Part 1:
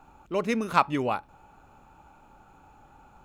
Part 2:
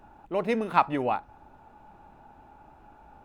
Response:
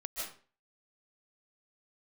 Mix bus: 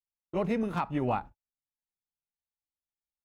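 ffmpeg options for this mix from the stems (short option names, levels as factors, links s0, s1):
-filter_complex "[0:a]asoftclip=type=hard:threshold=0.133,volume=0.188[s0];[1:a]bass=f=250:g=12,treble=f=4000:g=-2,volume=-1,adelay=22,volume=0.668[s1];[s0][s1]amix=inputs=2:normalize=0,agate=range=0.00112:threshold=0.01:ratio=16:detection=peak,alimiter=limit=0.119:level=0:latency=1:release=297"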